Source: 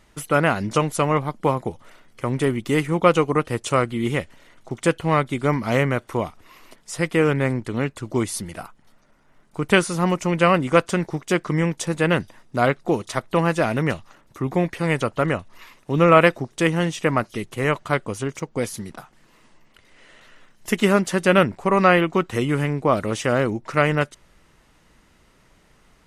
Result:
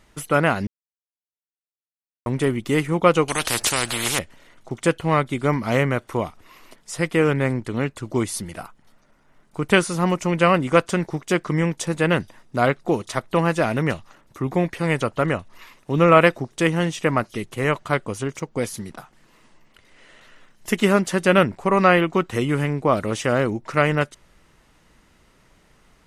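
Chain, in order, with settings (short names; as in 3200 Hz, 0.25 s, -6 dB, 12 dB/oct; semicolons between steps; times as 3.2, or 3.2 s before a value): 0.67–2.26 mute; 3.28–4.19 spectral compressor 4:1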